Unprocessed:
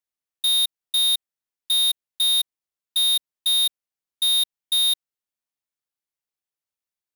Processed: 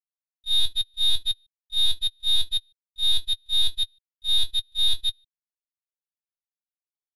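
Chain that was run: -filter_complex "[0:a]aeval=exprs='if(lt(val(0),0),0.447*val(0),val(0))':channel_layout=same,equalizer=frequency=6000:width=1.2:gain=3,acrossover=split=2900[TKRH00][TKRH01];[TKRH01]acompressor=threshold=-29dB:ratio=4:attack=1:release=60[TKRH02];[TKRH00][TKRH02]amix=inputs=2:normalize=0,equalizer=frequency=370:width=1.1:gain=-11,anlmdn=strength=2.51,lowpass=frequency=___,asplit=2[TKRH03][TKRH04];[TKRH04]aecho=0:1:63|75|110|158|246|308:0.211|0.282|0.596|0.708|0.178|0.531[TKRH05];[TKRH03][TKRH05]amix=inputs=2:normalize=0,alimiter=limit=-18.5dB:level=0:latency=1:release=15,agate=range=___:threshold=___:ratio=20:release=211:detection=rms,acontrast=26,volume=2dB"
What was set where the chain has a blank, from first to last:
8000, -37dB, -22dB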